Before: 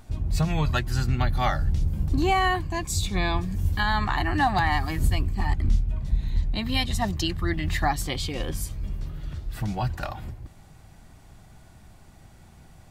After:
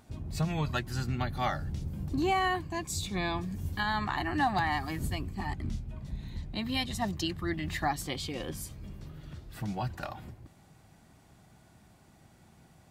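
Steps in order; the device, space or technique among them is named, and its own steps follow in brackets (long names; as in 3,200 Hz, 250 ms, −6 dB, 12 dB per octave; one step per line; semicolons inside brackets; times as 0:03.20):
filter by subtraction (in parallel: low-pass filter 210 Hz 12 dB per octave + polarity inversion)
on the sum: level −6 dB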